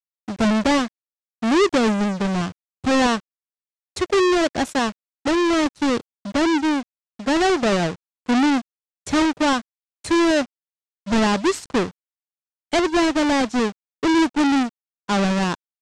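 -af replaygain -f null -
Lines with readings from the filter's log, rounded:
track_gain = +1.1 dB
track_peak = 0.202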